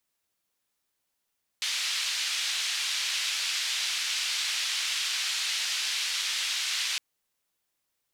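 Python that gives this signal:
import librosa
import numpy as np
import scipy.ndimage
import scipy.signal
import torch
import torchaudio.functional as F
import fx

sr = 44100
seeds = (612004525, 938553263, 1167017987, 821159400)

y = fx.band_noise(sr, seeds[0], length_s=5.36, low_hz=2700.0, high_hz=4100.0, level_db=-30.0)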